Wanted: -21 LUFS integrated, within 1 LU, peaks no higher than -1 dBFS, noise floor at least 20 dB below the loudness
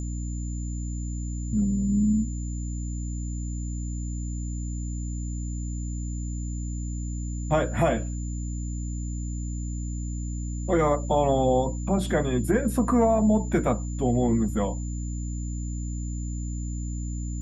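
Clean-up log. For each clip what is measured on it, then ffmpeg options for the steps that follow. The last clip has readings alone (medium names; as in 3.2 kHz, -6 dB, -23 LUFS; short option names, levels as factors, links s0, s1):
hum 60 Hz; highest harmonic 300 Hz; hum level -28 dBFS; steady tone 7.1 kHz; tone level -44 dBFS; loudness -28.0 LUFS; peak level -11.0 dBFS; loudness target -21.0 LUFS
-> -af "bandreject=f=60:t=h:w=4,bandreject=f=120:t=h:w=4,bandreject=f=180:t=h:w=4,bandreject=f=240:t=h:w=4,bandreject=f=300:t=h:w=4"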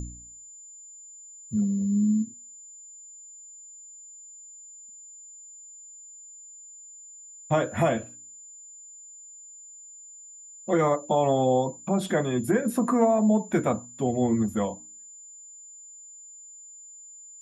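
hum not found; steady tone 7.1 kHz; tone level -44 dBFS
-> -af "bandreject=f=7100:w=30"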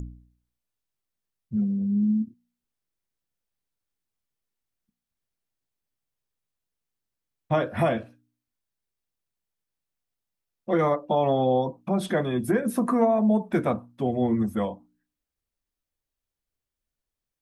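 steady tone not found; loudness -25.0 LUFS; peak level -11.5 dBFS; loudness target -21.0 LUFS
-> -af "volume=1.58"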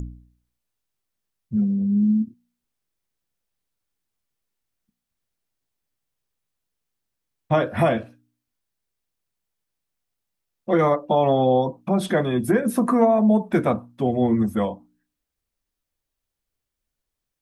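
loudness -21.0 LUFS; peak level -7.5 dBFS; noise floor -83 dBFS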